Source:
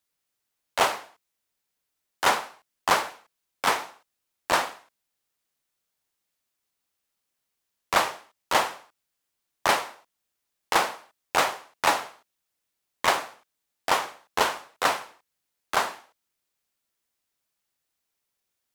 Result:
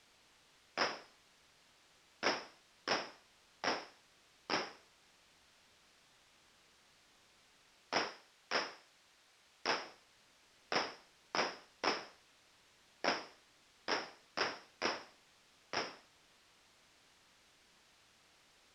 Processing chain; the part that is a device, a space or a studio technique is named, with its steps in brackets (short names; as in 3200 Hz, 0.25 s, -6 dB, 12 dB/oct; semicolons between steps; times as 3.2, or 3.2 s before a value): split-band scrambled radio (four-band scrambler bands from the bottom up 2341; BPF 350–2900 Hz; white noise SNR 18 dB); LPF 5000 Hz 12 dB/oct; 8.07–9.82 low shelf 410 Hz -5.5 dB; gain -5.5 dB